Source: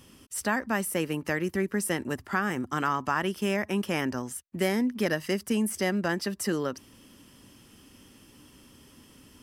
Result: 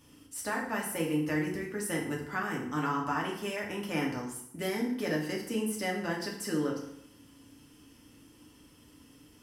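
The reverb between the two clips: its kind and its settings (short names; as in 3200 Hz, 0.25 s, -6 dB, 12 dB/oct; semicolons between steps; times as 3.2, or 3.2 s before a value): FDN reverb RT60 0.74 s, low-frequency decay 1.1×, high-frequency decay 0.8×, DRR -2.5 dB; gain -8.5 dB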